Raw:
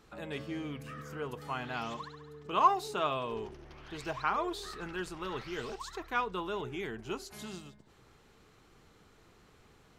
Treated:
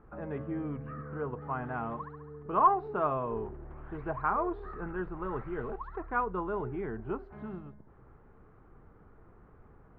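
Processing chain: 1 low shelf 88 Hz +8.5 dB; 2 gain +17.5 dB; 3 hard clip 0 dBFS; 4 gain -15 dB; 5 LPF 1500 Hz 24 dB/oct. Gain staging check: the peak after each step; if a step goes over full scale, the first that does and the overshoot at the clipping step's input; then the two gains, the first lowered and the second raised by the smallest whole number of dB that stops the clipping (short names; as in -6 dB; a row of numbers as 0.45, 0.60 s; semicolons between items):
-13.0, +4.5, 0.0, -15.0, -13.5 dBFS; step 2, 4.5 dB; step 2 +12.5 dB, step 4 -10 dB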